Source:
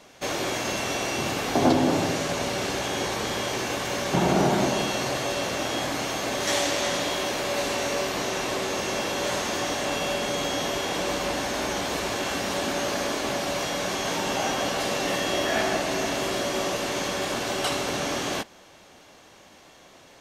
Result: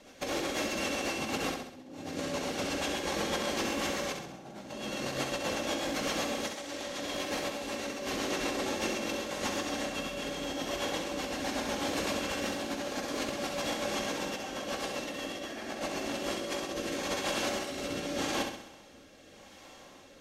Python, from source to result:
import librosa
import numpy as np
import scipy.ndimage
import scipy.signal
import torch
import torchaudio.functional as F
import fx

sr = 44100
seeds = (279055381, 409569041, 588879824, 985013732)

p1 = fx.low_shelf(x, sr, hz=470.0, db=2.5)
p2 = fx.hum_notches(p1, sr, base_hz=60, count=5)
p3 = p2 + 0.37 * np.pad(p2, (int(3.7 * sr / 1000.0), 0))[:len(p2)]
p4 = fx.over_compress(p3, sr, threshold_db=-28.0, ratio=-0.5)
p5 = fx.rotary_switch(p4, sr, hz=8.0, then_hz=0.85, switch_at_s=15.87)
p6 = p5 + fx.echo_feedback(p5, sr, ms=66, feedback_pct=50, wet_db=-6.0, dry=0)
y = F.gain(torch.from_numpy(p6), -5.0).numpy()